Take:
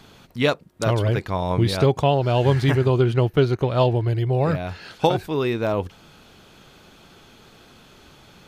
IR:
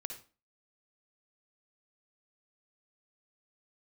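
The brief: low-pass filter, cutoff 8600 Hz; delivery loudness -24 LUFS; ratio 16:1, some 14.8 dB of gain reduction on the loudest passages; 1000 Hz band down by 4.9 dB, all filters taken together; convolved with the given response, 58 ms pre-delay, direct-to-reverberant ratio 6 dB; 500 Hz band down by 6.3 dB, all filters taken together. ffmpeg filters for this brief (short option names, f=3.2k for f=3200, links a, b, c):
-filter_complex "[0:a]lowpass=8.6k,equalizer=f=500:t=o:g=-7.5,equalizer=f=1k:t=o:g=-3.5,acompressor=threshold=-30dB:ratio=16,asplit=2[a][b];[1:a]atrim=start_sample=2205,adelay=58[c];[b][c]afir=irnorm=-1:irlink=0,volume=-4dB[d];[a][d]amix=inputs=2:normalize=0,volume=10.5dB"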